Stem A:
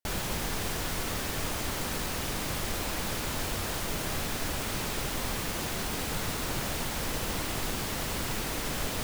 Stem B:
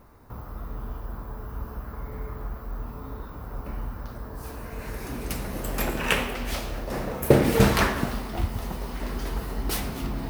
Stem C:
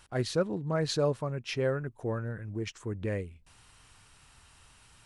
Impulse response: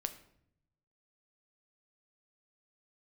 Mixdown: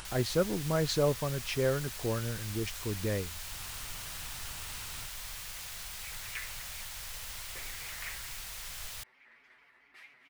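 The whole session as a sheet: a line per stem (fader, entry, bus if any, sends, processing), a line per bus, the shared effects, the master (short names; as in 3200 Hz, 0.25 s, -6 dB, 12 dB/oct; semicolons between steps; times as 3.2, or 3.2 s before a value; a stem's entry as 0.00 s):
-5.5 dB, 0.00 s, no send, passive tone stack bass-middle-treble 10-0-10
-11.5 dB, 0.25 s, no send, band-pass 2100 Hz, Q 5.5; comb 7.5 ms, depth 65%; shaped vibrato square 4.5 Hz, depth 100 cents
0.0 dB, 0.00 s, no send, upward compressor, threshold -36 dBFS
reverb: off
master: dry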